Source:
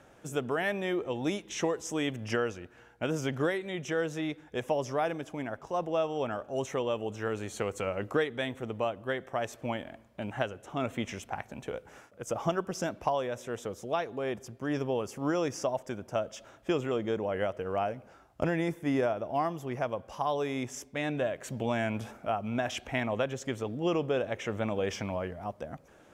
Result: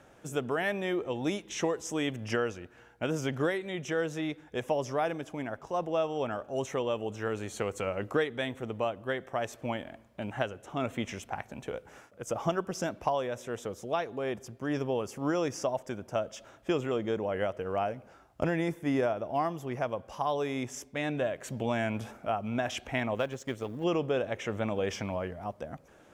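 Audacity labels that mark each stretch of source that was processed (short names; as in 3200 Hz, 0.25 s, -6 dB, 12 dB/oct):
23.150000	23.840000	G.711 law mismatch coded by A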